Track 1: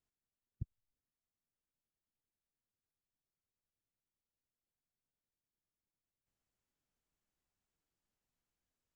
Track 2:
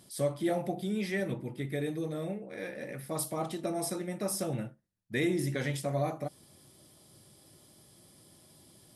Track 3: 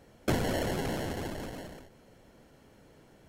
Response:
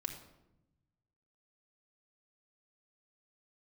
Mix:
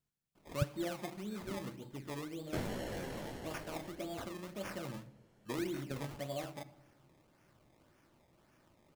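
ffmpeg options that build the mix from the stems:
-filter_complex "[0:a]equalizer=f=150:w=1.5:g=12,volume=1.06[s0];[1:a]acrusher=samples=21:mix=1:aa=0.000001:lfo=1:lforange=21:lforate=1.8,adelay=350,volume=0.237,asplit=2[s1][s2];[s2]volume=0.562[s3];[2:a]flanger=delay=16:depth=7:speed=1.8,adelay=2250,volume=0.398[s4];[3:a]atrim=start_sample=2205[s5];[s3][s5]afir=irnorm=-1:irlink=0[s6];[s0][s1][s4][s6]amix=inputs=4:normalize=0"

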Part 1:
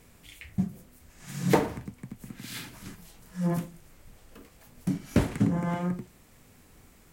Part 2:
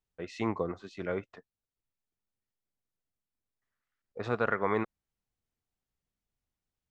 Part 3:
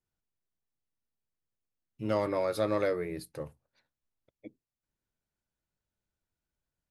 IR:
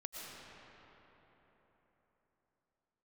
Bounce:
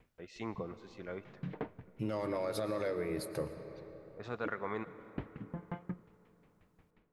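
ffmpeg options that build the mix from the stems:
-filter_complex "[0:a]lowpass=f=3100:w=0.5412,lowpass=f=3100:w=1.3066,aeval=exprs='val(0)*pow(10,-35*if(lt(mod(5.6*n/s,1),2*abs(5.6)/1000),1-mod(5.6*n/s,1)/(2*abs(5.6)/1000),(mod(5.6*n/s,1)-2*abs(5.6)/1000)/(1-2*abs(5.6)/1000))/20)':c=same,volume=0.531,asplit=2[s0][s1];[s1]volume=0.0794[s2];[1:a]adynamicequalizer=threshold=0.00224:dfrequency=5600:dqfactor=0.75:tfrequency=5600:tqfactor=0.75:attack=5:release=100:ratio=0.375:range=2.5:mode=boostabove:tftype=bell,volume=0.282,asplit=2[s3][s4];[s4]volume=0.335[s5];[2:a]alimiter=limit=0.0668:level=0:latency=1,acompressor=threshold=0.0126:ratio=5,volume=1.33,asplit=3[s6][s7][s8];[s7]volume=0.596[s9];[s8]apad=whole_len=314173[s10];[s0][s10]sidechaincompress=threshold=0.00126:ratio=4:attack=16:release=1000[s11];[3:a]atrim=start_sample=2205[s12];[s2][s5][s9]amix=inputs=3:normalize=0[s13];[s13][s12]afir=irnorm=-1:irlink=0[s14];[s11][s3][s6][s14]amix=inputs=4:normalize=0"

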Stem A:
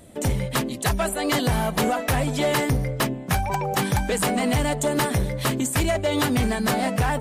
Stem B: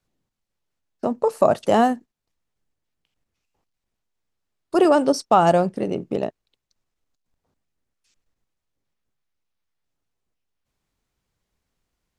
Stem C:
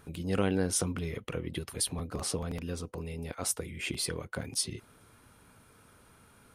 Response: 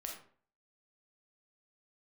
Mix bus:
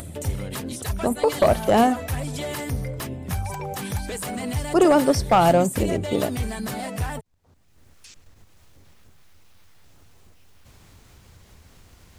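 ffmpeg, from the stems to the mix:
-filter_complex "[0:a]highshelf=f=5400:g=7,volume=0.596[s0];[1:a]asoftclip=type=hard:threshold=0.316,volume=1[s1];[2:a]volume=0.355[s2];[s0][s2]amix=inputs=2:normalize=0,aphaser=in_gain=1:out_gain=1:delay=4.9:decay=0.24:speed=0.9:type=triangular,alimiter=limit=0.0708:level=0:latency=1:release=98,volume=1[s3];[s1][s3]amix=inputs=2:normalize=0,equalizer=f=86:t=o:w=0.81:g=10,acompressor=mode=upward:threshold=0.0355:ratio=2.5"

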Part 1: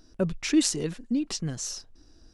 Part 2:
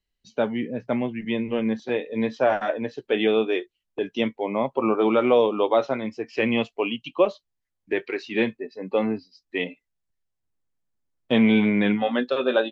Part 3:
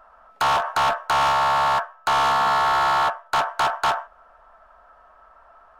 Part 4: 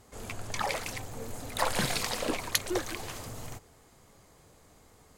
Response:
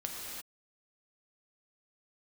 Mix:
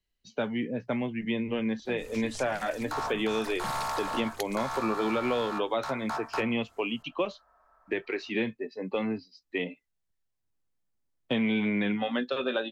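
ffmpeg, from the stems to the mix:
-filter_complex "[0:a]adelay=1700,volume=0.15[s0];[1:a]volume=0.891,asplit=2[s1][s2];[2:a]equalizer=f=3000:t=o:w=0.42:g=-13.5,adelay=2500,volume=0.251[s3];[3:a]adelay=1850,volume=0.447[s4];[s2]apad=whole_len=309892[s5];[s4][s5]sidechaincompress=threshold=0.0501:ratio=8:attack=16:release=127[s6];[s0][s1][s3][s6]amix=inputs=4:normalize=0,acrossover=split=200|1300[s7][s8][s9];[s7]acompressor=threshold=0.02:ratio=4[s10];[s8]acompressor=threshold=0.0316:ratio=4[s11];[s9]acompressor=threshold=0.0224:ratio=4[s12];[s10][s11][s12]amix=inputs=3:normalize=0"

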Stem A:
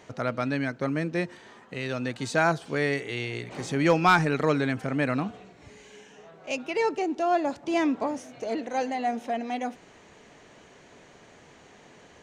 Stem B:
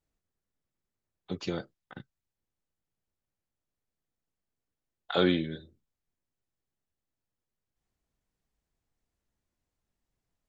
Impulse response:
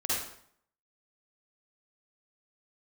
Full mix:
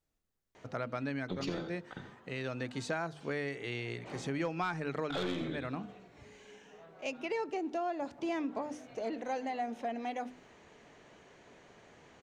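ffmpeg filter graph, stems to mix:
-filter_complex "[0:a]highshelf=f=5900:g=-7,adelay=550,volume=0.562[s0];[1:a]aeval=exprs='(tanh(17.8*val(0)+0.35)-tanh(0.35))/17.8':c=same,volume=1,asplit=4[s1][s2][s3][s4];[s2]volume=0.178[s5];[s3]volume=0.299[s6];[s4]apad=whole_len=563208[s7];[s0][s7]sidechaincompress=threshold=0.0178:ratio=8:attack=11:release=889[s8];[2:a]atrim=start_sample=2205[s9];[s5][s9]afir=irnorm=-1:irlink=0[s10];[s6]aecho=0:1:86:1[s11];[s8][s1][s10][s11]amix=inputs=4:normalize=0,bandreject=f=50:t=h:w=6,bandreject=f=100:t=h:w=6,bandreject=f=150:t=h:w=6,bandreject=f=200:t=h:w=6,bandreject=f=250:t=h:w=6,bandreject=f=300:t=h:w=6,acompressor=threshold=0.0251:ratio=5"

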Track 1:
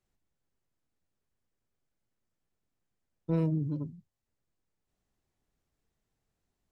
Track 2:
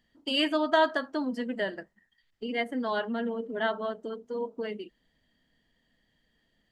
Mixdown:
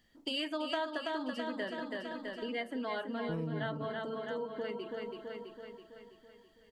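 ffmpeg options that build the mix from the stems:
-filter_complex "[0:a]volume=1.26,asplit=2[s0][s1];[s1]volume=0.0841[s2];[1:a]bass=f=250:g=-2,treble=f=4000:g=3,volume=1.19,asplit=2[s3][s4];[s4]volume=0.473[s5];[s2][s5]amix=inputs=2:normalize=0,aecho=0:1:329|658|987|1316|1645|1974|2303|2632:1|0.55|0.303|0.166|0.0915|0.0503|0.0277|0.0152[s6];[s0][s3][s6]amix=inputs=3:normalize=0,acompressor=threshold=0.0141:ratio=3"

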